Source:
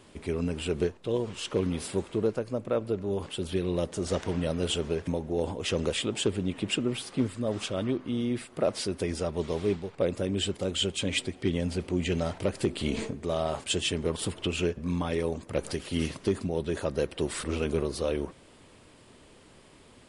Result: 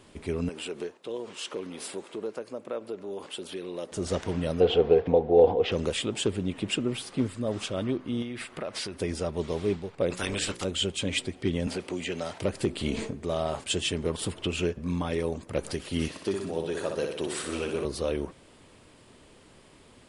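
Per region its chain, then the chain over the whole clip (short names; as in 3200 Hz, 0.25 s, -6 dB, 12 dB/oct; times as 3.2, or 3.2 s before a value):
0.49–3.92 compressor 2:1, threshold -31 dBFS + HPF 310 Hz
4.6–5.72 LPF 4000 Hz 24 dB/oct + small resonant body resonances 480/720 Hz, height 17 dB, ringing for 40 ms
8.22–8.96 compressor 5:1, threshold -34 dBFS + bell 2000 Hz +9 dB 2.4 oct
10.1–10.63 spectral limiter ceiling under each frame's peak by 22 dB + bell 690 Hz -5.5 dB 0.82 oct + notches 60/120/180/240/300/360/420/480/540 Hz
11.67–12.42 HPF 480 Hz 6 dB/oct + three-band squash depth 100%
16.08–17.85 HPF 320 Hz 6 dB/oct + notch 2100 Hz, Q 26 + flutter echo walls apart 10.5 m, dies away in 0.7 s
whole clip: dry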